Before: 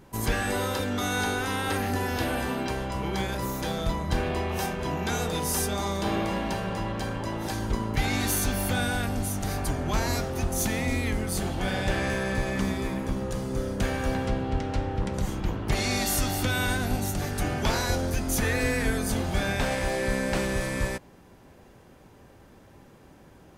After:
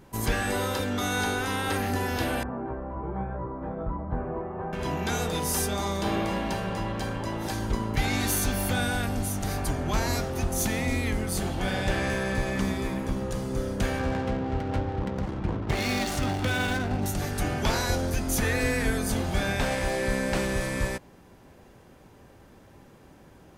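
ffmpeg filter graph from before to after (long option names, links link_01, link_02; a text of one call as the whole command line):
ffmpeg -i in.wav -filter_complex "[0:a]asettb=1/sr,asplit=3[link_01][link_02][link_03];[link_01]atrim=end=2.434[link_04];[link_02]atrim=start=2.43:end=4.73,asetpts=PTS-STARTPTS,afade=type=in:duration=0.004:curve=qsin,afade=type=out:start_time=2.296:duration=0.004:curve=qsin,lowpass=frequency=1300:width=0.5412,lowpass=frequency=1300:width=1.3066,flanger=delay=16.5:depth=2.3:speed=1.2[link_05];[link_03]atrim=start=4.726[link_06];[link_04][link_05]acrossfade=duration=0.004:curve1=hsin:curve2=qsin[link_07];[link_07][link_06]acrossfade=duration=0.004:curve1=qsin:curve2=hsin,asettb=1/sr,asplit=3[link_08][link_09][link_10];[link_08]atrim=end=13.994[link_11];[link_09]atrim=start=13.99:end=17.06,asetpts=PTS-STARTPTS,afade=type=in:duration=0.004:curve=qsin,afade=type=out:start_time=3.066:duration=0.004:curve=qsin,highpass=57,aphaser=in_gain=1:out_gain=1:delay=4.4:decay=0.21:speed=1.3:type=sinusoidal,adynamicsmooth=sensitivity=7.5:basefreq=570[link_12];[link_10]atrim=start=17.056[link_13];[link_11][link_12]acrossfade=duration=0.004:curve1=hsin:curve2=qsin[link_14];[link_14][link_13]acrossfade=duration=0.004:curve1=qsin:curve2=hsin" out.wav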